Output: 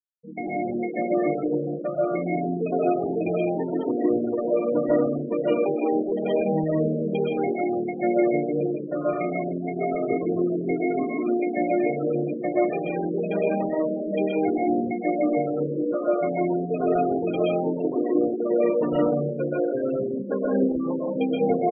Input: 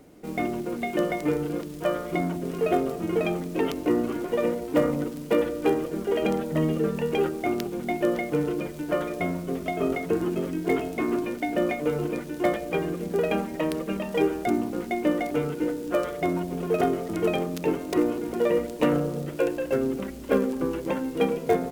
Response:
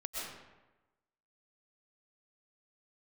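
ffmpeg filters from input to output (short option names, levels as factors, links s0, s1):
-filter_complex "[0:a]asettb=1/sr,asplit=3[s0][s1][s2];[s0]atrim=end=2.864[s3];[s1]atrim=start=2.86:end=4.53,asetpts=PTS-STARTPTS,afade=t=in:d=0.004:c=qsin,afade=t=out:st=1.666:d=0.004:c=qsin,acrossover=split=4600[s4][s5];[s5]acompressor=threshold=0.00112:ratio=4:attack=1:release=60[s6];[s4][s6]amix=inputs=2:normalize=0[s7];[s2]atrim=start=4.526[s8];[s3][s7]acrossfade=d=0.004:c1=hsin:c2=qsin[s9];[s9][s8]acrossfade=d=0.004:c1=qsin:c2=hsin,asplit=5[s10][s11][s12][s13][s14];[s11]adelay=84,afreqshift=78,volume=0.133[s15];[s12]adelay=168,afreqshift=156,volume=0.0653[s16];[s13]adelay=252,afreqshift=234,volume=0.032[s17];[s14]adelay=336,afreqshift=312,volume=0.0157[s18];[s10][s15][s16][s17][s18]amix=inputs=5:normalize=0[s19];[1:a]atrim=start_sample=2205,afade=t=out:st=0.36:d=0.01,atrim=end_sample=16317[s20];[s19][s20]afir=irnorm=-1:irlink=0,afftfilt=real='re*gte(hypot(re,im),0.0708)':imag='im*gte(hypot(re,im),0.0708)':win_size=1024:overlap=0.75"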